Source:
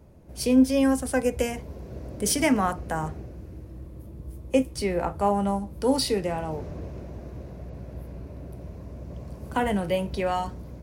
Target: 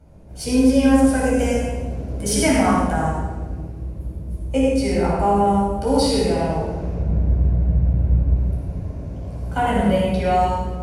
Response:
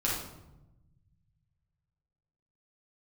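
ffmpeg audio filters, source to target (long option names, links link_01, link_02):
-filter_complex "[0:a]asettb=1/sr,asplit=3[link_01][link_02][link_03];[link_01]atrim=end=6.944[link_04];[link_02]atrim=start=6.94:end=8.37,asetpts=PTS-STARTPTS,afade=type=in:duration=0.004:curve=qsin,afade=type=out:start_time=1.426:duration=0.004:curve=qsin,bass=frequency=250:gain=10,treble=frequency=4000:gain=-11[link_05];[link_03]atrim=start=8.366[link_06];[link_04][link_05]acrossfade=duration=0.004:curve1=hsin:curve2=qsin[link_07];[link_07][link_06]acrossfade=duration=0.004:curve1=qsin:curve2=hsin[link_08];[1:a]atrim=start_sample=2205,asetrate=24696,aresample=44100[link_09];[link_08][link_09]afir=irnorm=-1:irlink=0,volume=-6.5dB"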